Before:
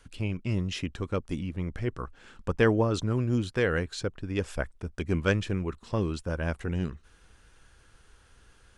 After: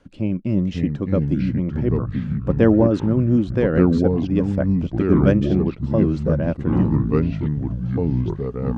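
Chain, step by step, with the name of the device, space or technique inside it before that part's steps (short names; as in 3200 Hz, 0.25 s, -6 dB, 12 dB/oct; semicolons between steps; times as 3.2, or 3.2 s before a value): inside a cardboard box (LPF 6000 Hz 12 dB/oct; small resonant body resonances 200/290/540 Hz, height 16 dB, ringing for 25 ms); echoes that change speed 0.495 s, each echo -4 st, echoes 3; gain -5 dB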